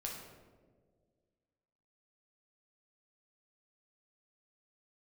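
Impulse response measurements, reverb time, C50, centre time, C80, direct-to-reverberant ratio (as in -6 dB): 1.7 s, 2.5 dB, 60 ms, 5.0 dB, -2.0 dB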